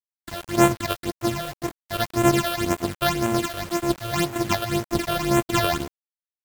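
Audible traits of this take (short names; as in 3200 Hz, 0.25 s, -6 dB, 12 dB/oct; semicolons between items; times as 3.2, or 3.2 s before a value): a buzz of ramps at a fixed pitch in blocks of 128 samples; phasing stages 8, 1.9 Hz, lowest notch 260–4800 Hz; a quantiser's noise floor 6-bit, dither none; AAC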